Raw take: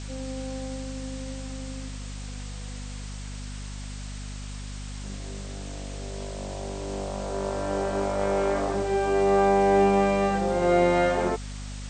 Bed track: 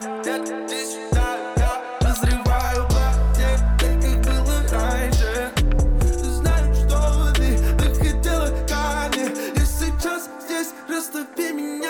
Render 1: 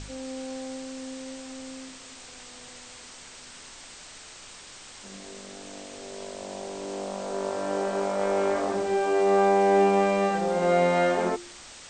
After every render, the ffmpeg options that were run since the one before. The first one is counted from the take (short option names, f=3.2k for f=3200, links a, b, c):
-af "bandreject=f=50:t=h:w=4,bandreject=f=100:t=h:w=4,bandreject=f=150:t=h:w=4,bandreject=f=200:t=h:w=4,bandreject=f=250:t=h:w=4,bandreject=f=300:t=h:w=4,bandreject=f=350:t=h:w=4"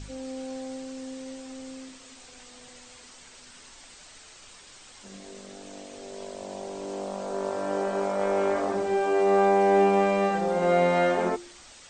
-af "afftdn=nr=6:nf=-46"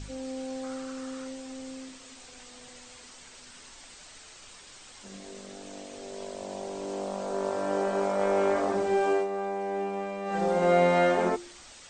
-filter_complex "[0:a]asettb=1/sr,asplit=3[a][b][c];[a]atrim=end=0.634[d];[b]atrim=start=0.63:end=1.28,asetpts=PTS-STARTPTS,afade=t=in:d=0.004:c=qsin,afade=t=out:st=0.646:d=0.004:c=qsin,equalizer=f=1.3k:t=o:w=0.5:g=14.5[e];[c]atrim=start=1.276[f];[d][e]acrossfade=d=0.004:c1=hsin:c2=qsin[g];[g][f]acrossfade=d=0.004:c1=qsin:c2=hsin,asplit=3[h][i][j];[h]atrim=end=9.28,asetpts=PTS-STARTPTS,afade=t=out:st=9.11:d=0.17:silence=0.266073[k];[i]atrim=start=9.28:end=10.25,asetpts=PTS-STARTPTS,volume=-11.5dB[l];[j]atrim=start=10.25,asetpts=PTS-STARTPTS,afade=t=in:d=0.17:silence=0.266073[m];[k][l][m]concat=n=3:v=0:a=1"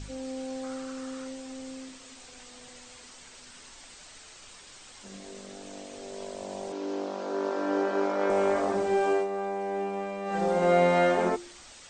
-filter_complex "[0:a]asettb=1/sr,asplit=3[a][b][c];[a]atrim=end=6.724[d];[b]atrim=start=6.72:end=8.3,asetpts=PTS-STARTPTS,afade=t=in:d=0.004:c=qsin,afade=t=out:st=1.576:d=0.004:c=qsin,highpass=f=230:w=0.5412,highpass=f=230:w=1.3066,equalizer=f=310:t=q:w=4:g=9,equalizer=f=650:t=q:w=4:g=-4,equalizer=f=1.5k:t=q:w=4:g=4,lowpass=f=6k:w=0.5412,lowpass=f=6k:w=1.3066[e];[c]atrim=start=8.296[f];[d][e]acrossfade=d=0.004:c1=hsin:c2=qsin[g];[g][f]acrossfade=d=0.004:c1=qsin:c2=hsin"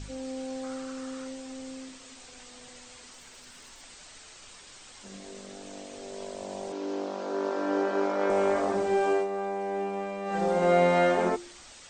-filter_complex "[0:a]asettb=1/sr,asplit=3[a][b][c];[a]atrim=end=3.134[d];[b]atrim=start=3.13:end=3.83,asetpts=PTS-STARTPTS,afade=t=in:d=0.004:c=qsin,afade=t=out:st=0.696:d=0.004:c=qsin,aeval=exprs='clip(val(0),-1,0.00531)':c=same[e];[c]atrim=start=3.826[f];[d][e]acrossfade=d=0.004:c1=hsin:c2=qsin[g];[g][f]acrossfade=d=0.004:c1=qsin:c2=hsin"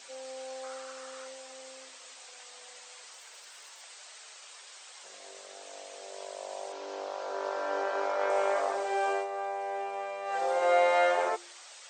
-af "highpass=f=510:w=0.5412,highpass=f=510:w=1.3066"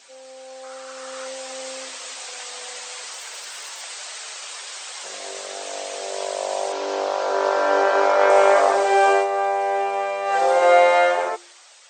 -af "dynaudnorm=f=210:g=11:m=15dB"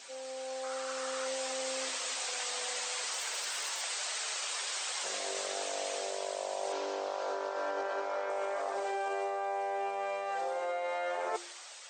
-af "alimiter=limit=-13dB:level=0:latency=1:release=68,areverse,acompressor=threshold=-32dB:ratio=10,areverse"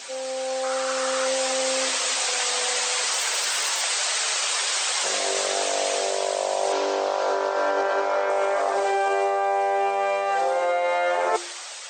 -af "volume=12dB"